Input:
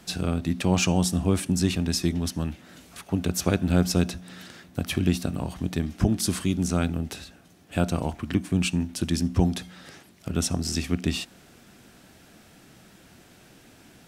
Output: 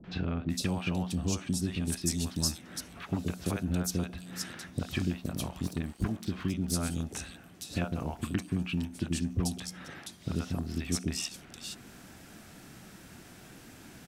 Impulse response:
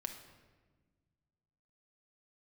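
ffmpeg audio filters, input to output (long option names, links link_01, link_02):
-filter_complex "[0:a]asettb=1/sr,asplit=3[link_01][link_02][link_03];[link_01]atrim=end=1.424[link_04];[link_02]atrim=start=1.42:end=2.08,asetpts=PTS-STARTPTS,afade=type=in:duration=0.004:curve=qsin,afade=type=out:start_time=0.656:duration=0.004:curve=qsin,bass=frequency=250:gain=0,treble=frequency=4000:gain=9[link_05];[link_03]atrim=start=2.076[link_06];[link_04][link_05]acrossfade=duration=0.004:curve1=hsin:curve2=qsin[link_07];[link_07][link_06]acrossfade=duration=0.004:curve1=qsin:curve2=hsin,acompressor=threshold=-34dB:ratio=2.5,asettb=1/sr,asplit=3[link_08][link_09][link_10];[link_08]atrim=end=5.104[link_11];[link_09]atrim=start=5.1:end=6.22,asetpts=PTS-STARTPTS,afade=type=in:duration=0.004:curve=qsin,afade=type=out:start_time=1.116:duration=0.004:curve=qsin,aeval=exprs='sgn(val(0))*max(abs(val(0))-0.00316,0)':channel_layout=same[link_12];[link_10]atrim=start=6.216[link_13];[link_11][link_12]acrossfade=duration=0.004:curve1=hsin:curve2=qsin[link_14];[link_14][link_13]acrossfade=duration=0.004:curve1=qsin:curve2=hsin,acrossover=split=530|3400[link_15][link_16][link_17];[link_16]adelay=40[link_18];[link_17]adelay=500[link_19];[link_15][link_18][link_19]amix=inputs=3:normalize=0,volume=2.5dB"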